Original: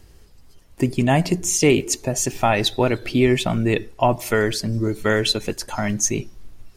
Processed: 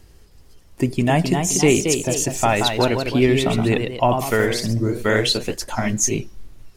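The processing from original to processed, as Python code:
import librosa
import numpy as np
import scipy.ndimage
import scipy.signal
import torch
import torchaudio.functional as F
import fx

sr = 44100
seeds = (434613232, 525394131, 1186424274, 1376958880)

y = fx.echo_pitch(x, sr, ms=316, semitones=1, count=2, db_per_echo=-6.0)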